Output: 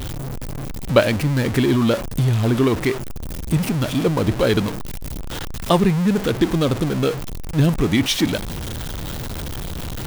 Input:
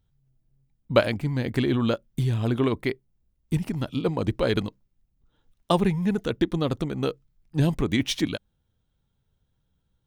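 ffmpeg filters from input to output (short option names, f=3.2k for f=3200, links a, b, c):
-af "aeval=exprs='val(0)+0.5*0.0531*sgn(val(0))':c=same,volume=4dB"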